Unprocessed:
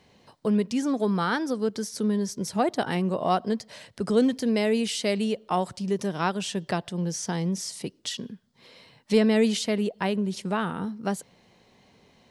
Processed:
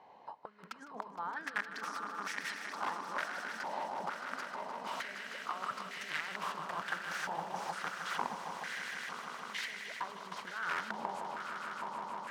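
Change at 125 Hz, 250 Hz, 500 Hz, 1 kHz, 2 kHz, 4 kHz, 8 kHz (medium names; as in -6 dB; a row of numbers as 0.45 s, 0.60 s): -25.5 dB, -27.5 dB, -20.5 dB, -6.0 dB, -2.0 dB, -11.0 dB, -14.5 dB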